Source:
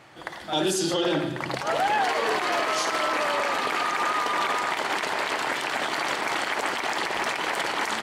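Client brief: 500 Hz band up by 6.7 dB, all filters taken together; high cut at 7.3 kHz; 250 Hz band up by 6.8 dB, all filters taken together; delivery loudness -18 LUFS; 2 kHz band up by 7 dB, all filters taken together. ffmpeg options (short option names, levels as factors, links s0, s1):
-af "lowpass=7300,equalizer=f=250:t=o:g=6.5,equalizer=f=500:t=o:g=6.5,equalizer=f=2000:t=o:g=8,volume=1.26"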